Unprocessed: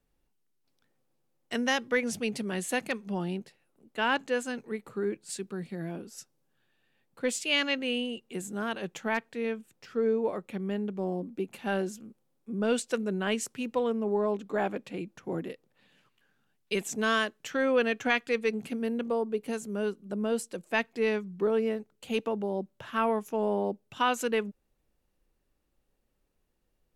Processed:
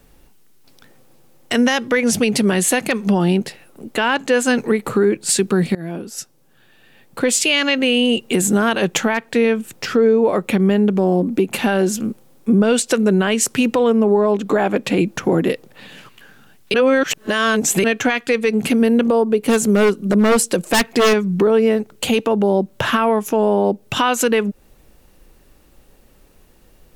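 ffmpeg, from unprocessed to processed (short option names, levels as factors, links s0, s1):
-filter_complex "[0:a]asplit=3[s0][s1][s2];[s0]afade=t=out:st=19.4:d=0.02[s3];[s1]aeval=exprs='0.0501*(abs(mod(val(0)/0.0501+3,4)-2)-1)':c=same,afade=t=in:st=19.4:d=0.02,afade=t=out:st=21.12:d=0.02[s4];[s2]afade=t=in:st=21.12:d=0.02[s5];[s3][s4][s5]amix=inputs=3:normalize=0,asplit=4[s6][s7][s8][s9];[s6]atrim=end=5.75,asetpts=PTS-STARTPTS,afade=t=out:st=5.746:d=0.004:c=hsin:silence=0.0944061[s10];[s7]atrim=start=5.75:end=16.742,asetpts=PTS-STARTPTS,afade=t=in:d=1.78:silence=0.0944061[s11];[s8]atrim=start=16.738:end=17.842,asetpts=PTS-STARTPTS,areverse[s12];[s9]atrim=start=17.838[s13];[s10][s11]concat=n=2:v=0:a=1[s14];[s14][s12]acrossfade=d=0.004:c1=hsin:c2=hsin[s15];[s15][s13]acrossfade=d=0.004:c1=hsin:c2=hsin,highshelf=f=10000:g=3,acompressor=threshold=0.0158:ratio=6,alimiter=level_in=33.5:limit=0.891:release=50:level=0:latency=1,volume=0.531"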